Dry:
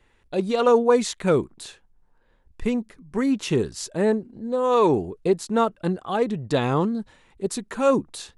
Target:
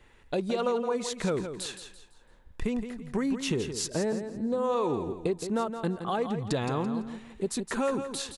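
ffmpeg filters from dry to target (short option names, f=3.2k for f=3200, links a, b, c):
-filter_complex "[0:a]acompressor=threshold=-31dB:ratio=5,asplit=2[a][b];[b]aecho=0:1:168|336|504|672:0.355|0.114|0.0363|0.0116[c];[a][c]amix=inputs=2:normalize=0,volume=3.5dB"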